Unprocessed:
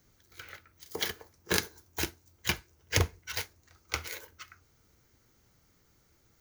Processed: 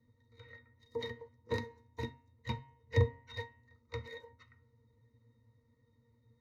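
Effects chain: pitch-class resonator A#, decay 0.13 s; de-hum 134.1 Hz, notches 24; trim +8.5 dB

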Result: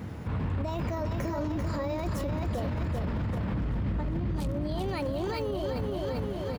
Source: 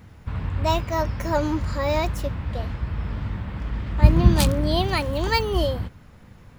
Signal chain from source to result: high-pass 56 Hz 12 dB/octave; peaking EQ 310 Hz +8.5 dB 3 oct; compressor with a negative ratio -22 dBFS, ratio -1; 3.53–4.49 s: bass shelf 210 Hz +7.5 dB; feedback delay 391 ms, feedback 51%, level -6 dB; peak limiter -24 dBFS, peak gain reduction 17.5 dB

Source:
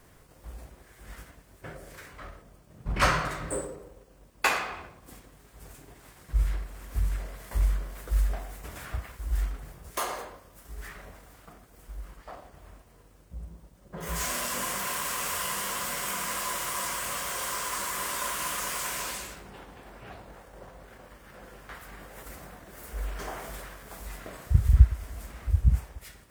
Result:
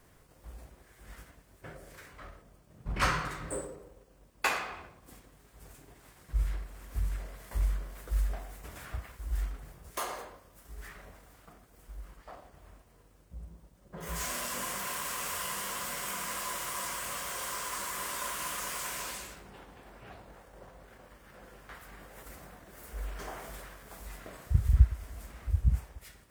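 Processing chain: 3.02–3.45 s: peaking EQ 630 Hz -9 dB 0.28 oct; trim -4.5 dB

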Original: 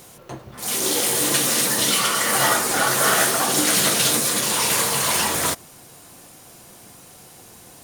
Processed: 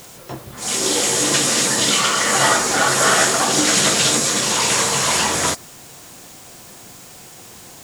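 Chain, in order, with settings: knee-point frequency compression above 3.9 kHz 1.5:1; word length cut 8-bit, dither triangular; trim +3.5 dB

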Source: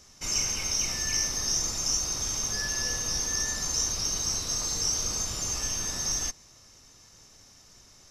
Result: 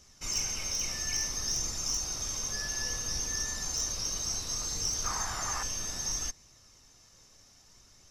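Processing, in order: 5.04–5.63 s: high-order bell 1.2 kHz +13 dB; wavefolder -18.5 dBFS; flange 0.62 Hz, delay 0.3 ms, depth 1.7 ms, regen +77%

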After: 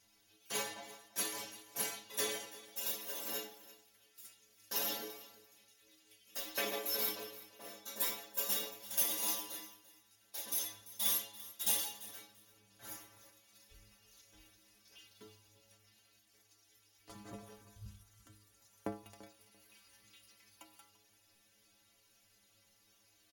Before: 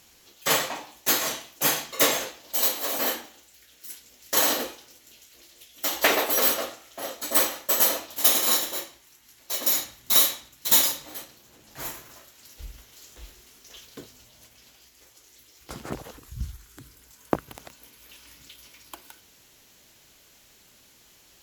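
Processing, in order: de-hum 180.3 Hz, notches 39; dynamic bell 1.4 kHz, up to -5 dB, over -41 dBFS, Q 1.2; inharmonic resonator 110 Hz, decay 0.34 s, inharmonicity 0.008; feedback delay 313 ms, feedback 17%, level -18 dB; speed mistake 48 kHz file played as 44.1 kHz; trim -3.5 dB

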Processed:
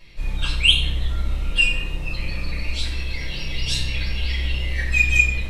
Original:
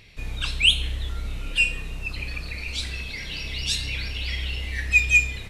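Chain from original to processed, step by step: on a send: tape echo 95 ms, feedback 85%, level -6 dB, low-pass 1.5 kHz; on the sum: simulated room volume 200 m³, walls furnished, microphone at 5.5 m; trim -8.5 dB

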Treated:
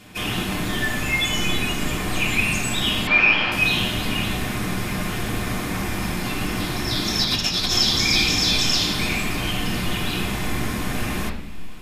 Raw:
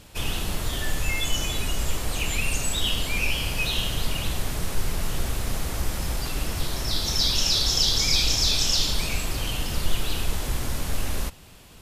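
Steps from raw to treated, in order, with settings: 3.07–3.52 s: cabinet simulation 160–4700 Hz, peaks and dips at 200 Hz -8 dB, 580 Hz +6 dB, 880 Hz +7 dB, 1.3 kHz +9 dB, 1.8 kHz +6 dB; 7.24–7.77 s: compressor with a negative ratio -24 dBFS, ratio -0.5; reverberation RT60 0.70 s, pre-delay 3 ms, DRR -4 dB

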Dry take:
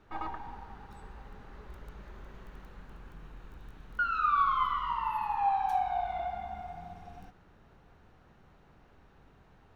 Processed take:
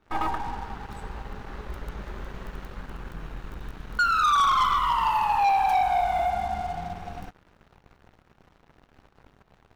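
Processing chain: waveshaping leveller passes 3

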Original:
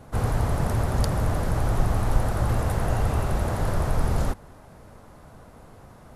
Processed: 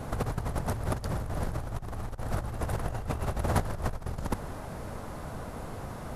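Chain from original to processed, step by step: compressor with a negative ratio -29 dBFS, ratio -0.5

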